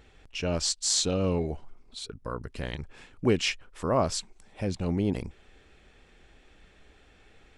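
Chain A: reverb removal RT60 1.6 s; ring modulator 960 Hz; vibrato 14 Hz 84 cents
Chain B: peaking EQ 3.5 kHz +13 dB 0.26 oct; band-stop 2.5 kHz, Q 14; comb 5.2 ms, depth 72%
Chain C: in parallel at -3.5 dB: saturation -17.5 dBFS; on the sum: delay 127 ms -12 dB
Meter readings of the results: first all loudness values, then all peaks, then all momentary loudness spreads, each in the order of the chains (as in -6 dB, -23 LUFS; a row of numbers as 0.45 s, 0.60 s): -33.0 LUFS, -26.5 LUFS, -25.5 LUFS; -11.5 dBFS, -7.5 dBFS, -6.5 dBFS; 16 LU, 16 LU, 16 LU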